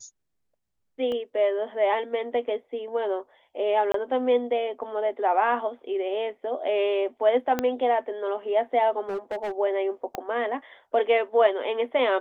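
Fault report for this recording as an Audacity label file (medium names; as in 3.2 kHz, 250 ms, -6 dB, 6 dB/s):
1.120000	1.120000	dropout 2.1 ms
3.920000	3.940000	dropout 23 ms
7.590000	7.590000	pop -11 dBFS
9.080000	9.520000	clipped -26.5 dBFS
10.150000	10.150000	pop -16 dBFS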